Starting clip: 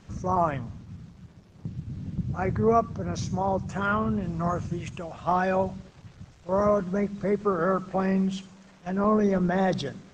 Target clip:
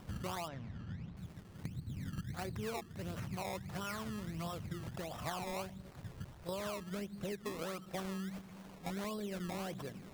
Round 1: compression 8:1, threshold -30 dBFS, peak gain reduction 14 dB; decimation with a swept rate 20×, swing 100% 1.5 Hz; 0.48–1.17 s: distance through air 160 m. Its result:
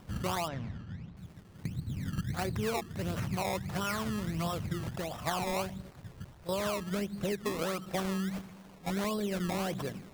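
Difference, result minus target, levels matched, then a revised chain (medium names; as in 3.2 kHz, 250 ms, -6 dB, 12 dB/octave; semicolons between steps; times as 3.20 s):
compression: peak gain reduction -8 dB
compression 8:1, threshold -39 dBFS, peak gain reduction 21.5 dB; decimation with a swept rate 20×, swing 100% 1.5 Hz; 0.48–1.17 s: distance through air 160 m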